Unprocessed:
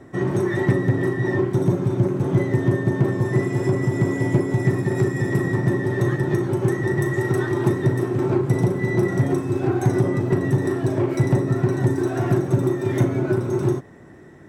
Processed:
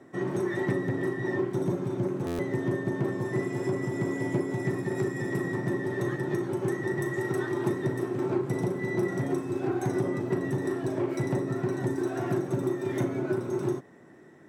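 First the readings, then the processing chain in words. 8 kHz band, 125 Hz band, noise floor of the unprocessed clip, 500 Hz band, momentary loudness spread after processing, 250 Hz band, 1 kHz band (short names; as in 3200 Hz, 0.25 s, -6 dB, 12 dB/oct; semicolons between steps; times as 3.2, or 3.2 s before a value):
-6.5 dB, -12.5 dB, -44 dBFS, -6.5 dB, 2 LU, -7.5 dB, -6.5 dB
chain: HPF 170 Hz 12 dB/oct; stuck buffer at 2.26, samples 512, times 10; gain -6.5 dB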